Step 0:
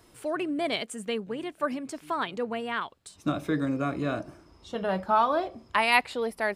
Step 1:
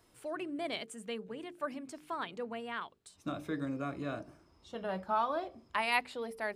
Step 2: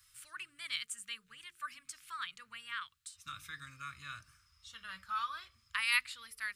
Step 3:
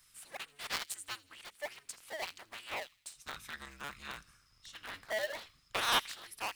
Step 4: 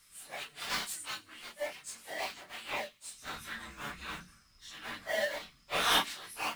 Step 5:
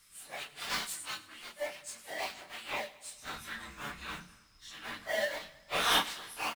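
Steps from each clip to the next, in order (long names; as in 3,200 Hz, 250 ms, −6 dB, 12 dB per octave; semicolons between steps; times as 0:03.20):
mains-hum notches 50/100/150/200/250/300/350/400/450 Hz; level −8.5 dB
drawn EQ curve 100 Hz 0 dB, 300 Hz −30 dB, 760 Hz −30 dB, 1,200 Hz +3 dB, 8,100 Hz +11 dB; level −3.5 dB
sub-harmonics by changed cycles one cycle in 2, inverted; delay with a high-pass on its return 81 ms, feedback 48%, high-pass 3,200 Hz, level −19 dB; level +1 dB
random phases in long frames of 100 ms; on a send at −12.5 dB: convolution reverb RT60 0.20 s, pre-delay 3 ms; on the sum: level +3 dB
repeating echo 107 ms, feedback 58%, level −19.5 dB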